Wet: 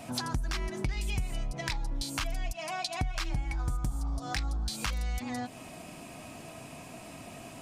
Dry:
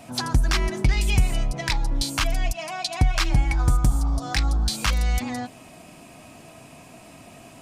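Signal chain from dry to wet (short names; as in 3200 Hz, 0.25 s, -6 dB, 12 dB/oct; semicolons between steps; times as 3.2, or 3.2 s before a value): compressor 3:1, threshold -33 dBFS, peak gain reduction 14.5 dB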